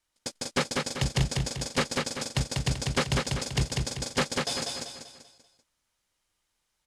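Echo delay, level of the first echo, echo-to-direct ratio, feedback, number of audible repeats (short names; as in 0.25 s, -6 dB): 0.194 s, -3.0 dB, -2.0 dB, 42%, 5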